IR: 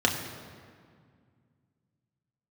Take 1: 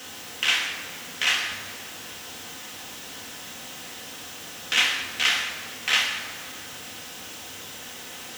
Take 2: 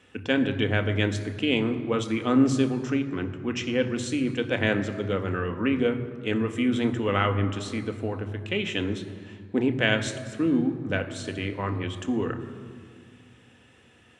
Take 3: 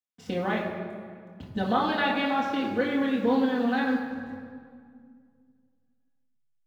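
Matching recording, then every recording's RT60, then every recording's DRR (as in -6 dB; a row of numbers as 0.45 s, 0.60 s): 1; 2.0 s, 2.0 s, 2.0 s; 0.0 dB, 6.0 dB, -5.5 dB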